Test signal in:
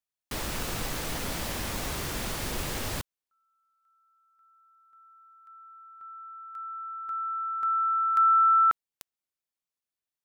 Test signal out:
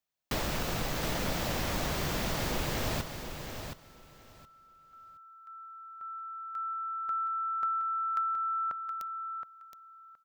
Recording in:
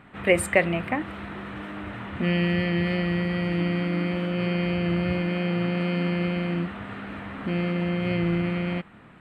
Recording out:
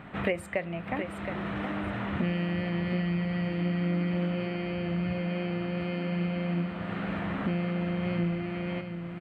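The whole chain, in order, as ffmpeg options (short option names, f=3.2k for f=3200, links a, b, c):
-filter_complex "[0:a]equalizer=f=160:t=o:w=0.67:g=4,equalizer=f=630:t=o:w=0.67:g=4,equalizer=f=10k:t=o:w=0.67:g=-8,acompressor=threshold=-32dB:ratio=10:attack=64:release=612:knee=6:detection=rms,asplit=2[a][b];[b]aecho=0:1:720|1440|2160:0.398|0.0717|0.0129[c];[a][c]amix=inputs=2:normalize=0,volume=3.5dB"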